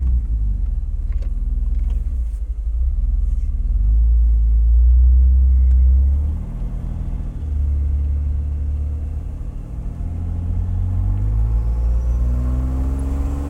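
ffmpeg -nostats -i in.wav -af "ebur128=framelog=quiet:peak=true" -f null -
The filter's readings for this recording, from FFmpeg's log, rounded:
Integrated loudness:
  I:         -20.6 LUFS
  Threshold: -30.6 LUFS
Loudness range:
  LRA:         7.5 LU
  Threshold: -40.2 LUFS
  LRA low:   -24.1 LUFS
  LRA high:  -16.6 LUFS
True peak:
  Peak:       -6.8 dBFS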